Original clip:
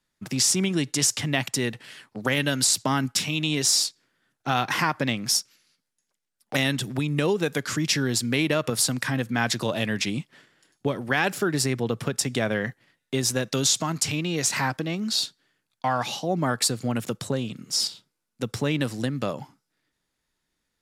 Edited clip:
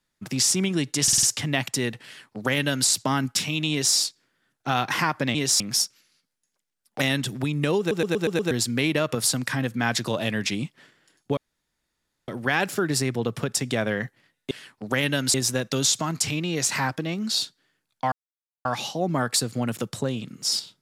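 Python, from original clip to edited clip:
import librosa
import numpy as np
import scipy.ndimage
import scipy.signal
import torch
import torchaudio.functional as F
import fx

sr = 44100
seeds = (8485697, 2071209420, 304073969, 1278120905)

y = fx.edit(x, sr, fx.stutter(start_s=1.03, slice_s=0.05, count=5),
    fx.duplicate(start_s=1.85, length_s=0.83, to_s=13.15),
    fx.duplicate(start_s=3.51, length_s=0.25, to_s=5.15),
    fx.stutter_over(start_s=7.34, slice_s=0.12, count=6),
    fx.insert_room_tone(at_s=10.92, length_s=0.91),
    fx.insert_silence(at_s=15.93, length_s=0.53), tone=tone)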